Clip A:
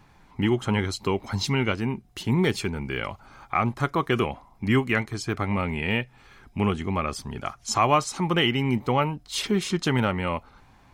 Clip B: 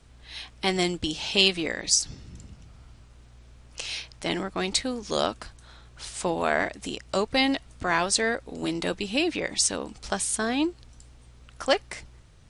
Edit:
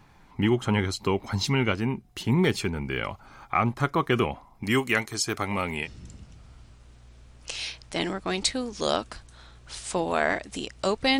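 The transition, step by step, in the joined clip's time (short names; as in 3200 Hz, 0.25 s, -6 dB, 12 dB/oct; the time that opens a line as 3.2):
clip A
4.63–5.88 tone controls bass -7 dB, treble +11 dB
5.85 switch to clip B from 2.15 s, crossfade 0.06 s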